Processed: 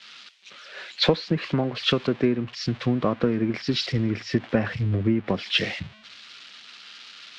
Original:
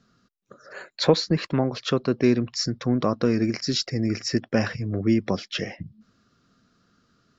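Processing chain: zero-crossing glitches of -18.5 dBFS; low-pass 3.3 kHz 24 dB/octave; compression 8:1, threshold -24 dBFS, peak gain reduction 13 dB; three bands expanded up and down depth 100%; trim +4.5 dB

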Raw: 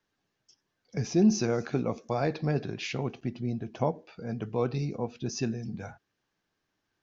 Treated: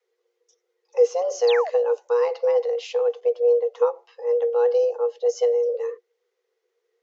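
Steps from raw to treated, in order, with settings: resonant low shelf 170 Hz +13 dB, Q 3; painted sound fall, 1.47–1.70 s, 210–4800 Hz -27 dBFS; frequency shift +360 Hz; trim -2 dB

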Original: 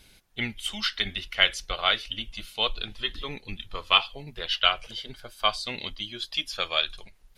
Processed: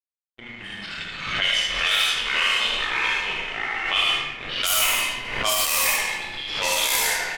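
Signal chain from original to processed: 4.62–5.65 s: square wave that keeps the level; pre-emphasis filter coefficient 0.8; Schroeder reverb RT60 1.4 s, combs from 27 ms, DRR -4 dB; 0.86–1.27 s: expander -26 dBFS; crossover distortion -41 dBFS; 1.79–2.32 s: tilt EQ +2.5 dB/octave; early reflections 22 ms -7.5 dB, 77 ms -3.5 dB; ever faster or slower copies 145 ms, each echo -3 st, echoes 3; level-controlled noise filter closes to 1.4 kHz, open at -18.5 dBFS; level rider gain up to 4 dB; loudness maximiser +10 dB; swell ahead of each attack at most 52 dB/s; trim -9 dB

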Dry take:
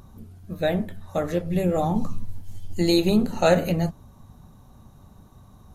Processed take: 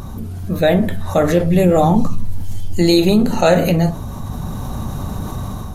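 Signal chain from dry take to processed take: level rider gain up to 13 dB; reverberation, pre-delay 36 ms, DRR 15.5 dB; level flattener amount 50%; trim -1.5 dB

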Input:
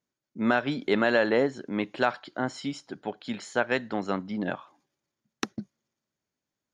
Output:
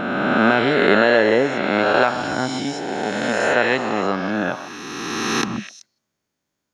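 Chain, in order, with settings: reverse spectral sustain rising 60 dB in 2.46 s; repeats whose band climbs or falls 127 ms, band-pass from 940 Hz, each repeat 1.4 oct, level -7 dB; trim +4.5 dB

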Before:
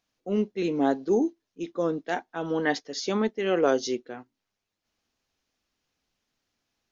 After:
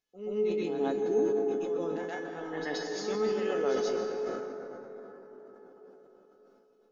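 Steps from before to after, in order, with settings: feedback comb 430 Hz, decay 0.42 s, mix 90%; reverse echo 128 ms -7.5 dB; on a send at -3 dB: reverberation RT60 5.0 s, pre-delay 121 ms; on the sum: decay stretcher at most 28 dB/s; trim +5.5 dB

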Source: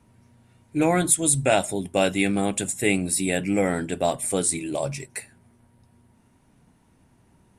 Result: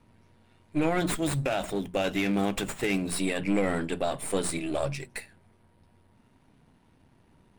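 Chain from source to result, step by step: partial rectifier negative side -7 dB; resonant high shelf 5.3 kHz -6 dB, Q 1.5; hum notches 60/120/180/240 Hz; peak limiter -17.5 dBFS, peak gain reduction 10 dB; 0.98–3.10 s: sliding maximum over 3 samples; trim +1 dB

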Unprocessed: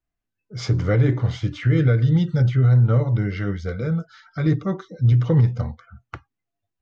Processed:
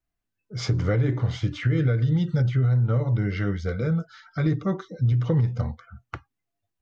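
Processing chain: compression 4:1, threshold -19 dBFS, peak gain reduction 6 dB

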